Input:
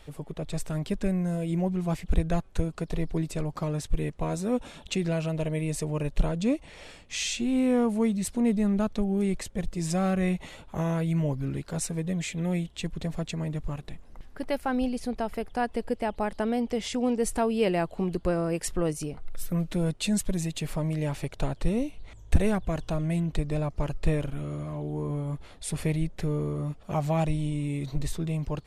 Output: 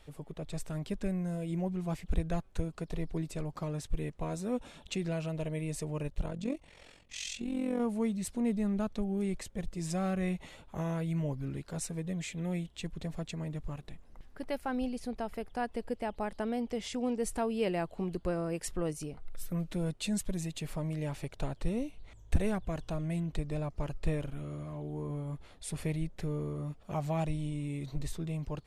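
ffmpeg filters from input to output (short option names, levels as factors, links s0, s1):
-filter_complex "[0:a]asplit=3[s0][s1][s2];[s0]afade=t=out:st=6.07:d=0.02[s3];[s1]tremolo=f=44:d=0.71,afade=t=in:st=6.07:d=0.02,afade=t=out:st=7.79:d=0.02[s4];[s2]afade=t=in:st=7.79:d=0.02[s5];[s3][s4][s5]amix=inputs=3:normalize=0,volume=0.473"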